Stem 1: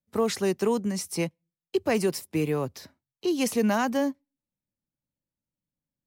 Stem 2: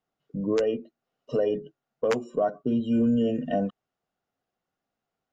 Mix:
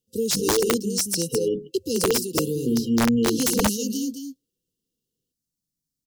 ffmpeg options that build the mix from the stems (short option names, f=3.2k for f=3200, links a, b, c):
-filter_complex "[0:a]highshelf=f=3.8k:t=q:w=1.5:g=9,volume=0dB,asplit=2[a][b];[b]volume=-7.5dB[c];[1:a]volume=2.5dB[d];[c]aecho=0:1:212:1[e];[a][d][e]amix=inputs=3:normalize=0,afftfilt=real='re*(1-between(b*sr/4096,520,2700))':imag='im*(1-between(b*sr/4096,520,2700))':win_size=4096:overlap=0.75,aeval=exprs='(mod(4.73*val(0)+1,2)-1)/4.73':c=same"